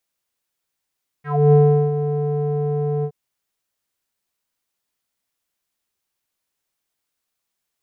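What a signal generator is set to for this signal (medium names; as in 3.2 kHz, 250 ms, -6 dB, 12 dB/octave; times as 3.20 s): synth note square D3 12 dB/octave, low-pass 540 Hz, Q 5.8, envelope 2 oct, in 0.14 s, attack 285 ms, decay 0.39 s, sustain -10.5 dB, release 0.07 s, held 1.80 s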